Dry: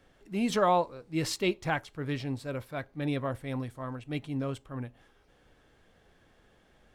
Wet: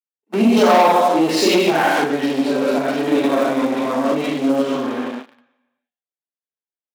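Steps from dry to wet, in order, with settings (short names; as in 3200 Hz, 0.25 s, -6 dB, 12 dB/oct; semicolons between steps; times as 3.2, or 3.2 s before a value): 1.99–4.04 reverse delay 0.541 s, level -4 dB; gate -52 dBFS, range -56 dB; reverb RT60 1.1 s, pre-delay 32 ms, DRR -11 dB; sample leveller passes 3; compressor, threshold 0 dBFS, peak gain reduction 9 dB; elliptic high-pass 220 Hz, stop band 60 dB; high shelf 5500 Hz +9.5 dB; mismatched tape noise reduction encoder only; gain -10.5 dB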